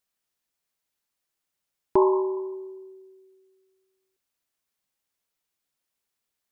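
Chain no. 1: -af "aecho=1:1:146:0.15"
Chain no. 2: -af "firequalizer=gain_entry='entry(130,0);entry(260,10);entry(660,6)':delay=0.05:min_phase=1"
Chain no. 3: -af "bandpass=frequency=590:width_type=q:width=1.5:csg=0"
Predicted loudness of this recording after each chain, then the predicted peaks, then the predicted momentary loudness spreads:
−25.0, −17.0, −29.5 LKFS; −9.5, −1.5, −13.0 dBFS; 20, 20, 18 LU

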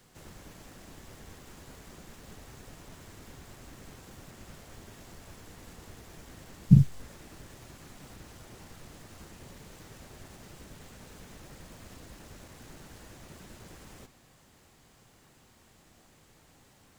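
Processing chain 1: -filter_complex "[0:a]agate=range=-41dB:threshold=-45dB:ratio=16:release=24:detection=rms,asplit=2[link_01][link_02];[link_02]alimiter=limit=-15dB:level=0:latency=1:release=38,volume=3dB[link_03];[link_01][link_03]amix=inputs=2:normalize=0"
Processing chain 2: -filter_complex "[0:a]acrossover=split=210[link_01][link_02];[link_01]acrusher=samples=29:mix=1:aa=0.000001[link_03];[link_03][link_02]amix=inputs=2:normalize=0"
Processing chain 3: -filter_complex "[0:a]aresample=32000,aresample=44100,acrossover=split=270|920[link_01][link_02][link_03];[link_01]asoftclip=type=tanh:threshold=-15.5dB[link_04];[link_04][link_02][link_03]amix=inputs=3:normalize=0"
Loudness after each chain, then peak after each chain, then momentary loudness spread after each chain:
−18.0, −22.5, −40.0 LKFS; −2.0, −5.0, −12.0 dBFS; 5, 6, 10 LU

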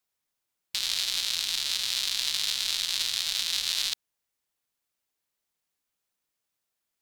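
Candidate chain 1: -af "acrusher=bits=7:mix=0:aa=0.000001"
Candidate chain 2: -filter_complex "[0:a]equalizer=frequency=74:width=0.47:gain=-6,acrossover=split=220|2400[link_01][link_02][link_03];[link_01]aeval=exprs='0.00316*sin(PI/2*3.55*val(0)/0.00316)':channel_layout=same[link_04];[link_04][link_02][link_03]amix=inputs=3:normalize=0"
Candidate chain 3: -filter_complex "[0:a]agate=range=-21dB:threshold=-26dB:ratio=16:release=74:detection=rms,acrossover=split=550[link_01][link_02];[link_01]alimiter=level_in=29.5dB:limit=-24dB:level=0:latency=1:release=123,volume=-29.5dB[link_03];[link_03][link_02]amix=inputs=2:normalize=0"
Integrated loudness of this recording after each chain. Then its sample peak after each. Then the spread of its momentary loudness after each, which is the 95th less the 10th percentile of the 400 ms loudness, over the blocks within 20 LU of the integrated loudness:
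−26.5, −26.5, −29.0 LKFS; −9.5, −12.0, −11.0 dBFS; 3, 3, 3 LU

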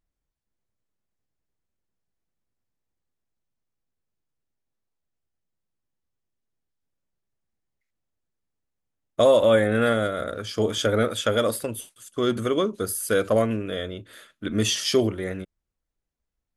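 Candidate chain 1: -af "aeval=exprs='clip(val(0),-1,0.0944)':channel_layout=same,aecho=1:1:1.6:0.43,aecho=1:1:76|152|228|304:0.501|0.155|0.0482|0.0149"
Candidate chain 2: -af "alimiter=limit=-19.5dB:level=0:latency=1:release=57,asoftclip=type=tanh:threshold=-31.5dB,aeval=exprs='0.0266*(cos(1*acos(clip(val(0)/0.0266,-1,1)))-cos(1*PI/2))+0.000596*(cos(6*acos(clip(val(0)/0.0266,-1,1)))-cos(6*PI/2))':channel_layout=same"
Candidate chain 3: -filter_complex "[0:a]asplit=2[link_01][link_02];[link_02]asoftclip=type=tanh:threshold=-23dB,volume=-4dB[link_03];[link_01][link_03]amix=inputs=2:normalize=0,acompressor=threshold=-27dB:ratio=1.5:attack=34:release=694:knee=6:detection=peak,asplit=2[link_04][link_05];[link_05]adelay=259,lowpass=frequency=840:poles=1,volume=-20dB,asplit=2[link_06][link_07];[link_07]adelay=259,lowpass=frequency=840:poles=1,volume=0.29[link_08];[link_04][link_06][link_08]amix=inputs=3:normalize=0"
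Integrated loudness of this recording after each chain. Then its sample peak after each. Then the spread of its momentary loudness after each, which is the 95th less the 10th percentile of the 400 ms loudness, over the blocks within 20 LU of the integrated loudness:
−23.0, −35.5, −25.0 LKFS; −4.5, −31.0, −11.0 dBFS; 15, 7, 12 LU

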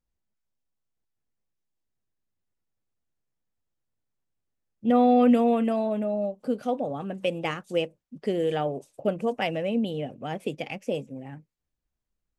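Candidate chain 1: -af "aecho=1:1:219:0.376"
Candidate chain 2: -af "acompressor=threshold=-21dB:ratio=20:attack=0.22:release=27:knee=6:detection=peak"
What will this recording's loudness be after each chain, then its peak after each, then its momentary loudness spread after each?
−26.0, −31.0 LKFS; −8.5, −19.0 dBFS; 14, 9 LU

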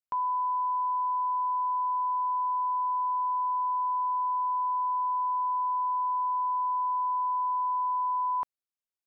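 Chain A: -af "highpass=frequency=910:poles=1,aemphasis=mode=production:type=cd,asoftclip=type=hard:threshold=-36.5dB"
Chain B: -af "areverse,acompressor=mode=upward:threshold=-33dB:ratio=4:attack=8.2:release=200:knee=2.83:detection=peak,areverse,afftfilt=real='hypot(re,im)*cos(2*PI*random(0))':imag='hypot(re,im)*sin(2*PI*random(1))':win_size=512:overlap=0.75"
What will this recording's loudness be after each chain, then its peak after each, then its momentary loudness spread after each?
−37.0, −34.5 LKFS; −36.5, −21.0 dBFS; 0, 2 LU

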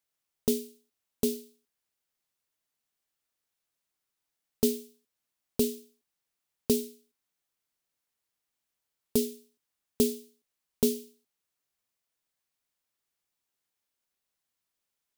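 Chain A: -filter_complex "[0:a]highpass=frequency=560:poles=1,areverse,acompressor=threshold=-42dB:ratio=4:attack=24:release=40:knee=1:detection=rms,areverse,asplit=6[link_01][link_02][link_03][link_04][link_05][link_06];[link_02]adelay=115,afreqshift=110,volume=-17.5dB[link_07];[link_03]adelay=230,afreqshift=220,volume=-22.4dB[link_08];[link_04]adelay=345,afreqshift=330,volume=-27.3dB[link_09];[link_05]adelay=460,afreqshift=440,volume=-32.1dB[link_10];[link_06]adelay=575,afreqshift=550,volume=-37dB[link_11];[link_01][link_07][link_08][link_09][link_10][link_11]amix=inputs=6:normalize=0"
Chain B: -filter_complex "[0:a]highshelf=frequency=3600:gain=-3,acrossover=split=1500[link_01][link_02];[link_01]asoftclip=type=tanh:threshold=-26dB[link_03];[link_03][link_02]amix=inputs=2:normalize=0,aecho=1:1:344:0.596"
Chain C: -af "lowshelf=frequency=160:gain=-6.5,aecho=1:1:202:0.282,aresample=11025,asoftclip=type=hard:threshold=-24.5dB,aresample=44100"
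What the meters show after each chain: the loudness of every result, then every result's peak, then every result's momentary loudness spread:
−44.0, −36.0, −36.5 LKFS; −27.5, −17.0, −23.0 dBFS; 16, 11, 12 LU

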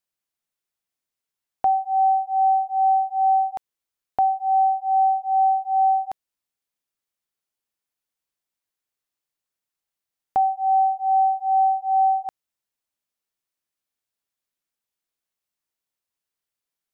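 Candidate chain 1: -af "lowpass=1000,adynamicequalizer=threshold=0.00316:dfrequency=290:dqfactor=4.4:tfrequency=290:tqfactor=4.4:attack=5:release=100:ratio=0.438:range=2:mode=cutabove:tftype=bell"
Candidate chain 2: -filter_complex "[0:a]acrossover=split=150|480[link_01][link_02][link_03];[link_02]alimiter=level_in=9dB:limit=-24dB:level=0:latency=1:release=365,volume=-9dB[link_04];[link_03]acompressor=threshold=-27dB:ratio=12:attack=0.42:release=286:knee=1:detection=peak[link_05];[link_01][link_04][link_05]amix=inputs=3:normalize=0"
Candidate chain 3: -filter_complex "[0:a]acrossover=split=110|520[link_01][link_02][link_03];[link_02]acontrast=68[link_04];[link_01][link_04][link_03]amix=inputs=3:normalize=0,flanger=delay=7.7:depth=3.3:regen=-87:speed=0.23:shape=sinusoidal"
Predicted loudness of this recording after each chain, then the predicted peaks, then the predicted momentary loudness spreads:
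−22.0, −28.5, −23.5 LKFS; −15.0, −22.0, −14.5 dBFS; 7, 7, 7 LU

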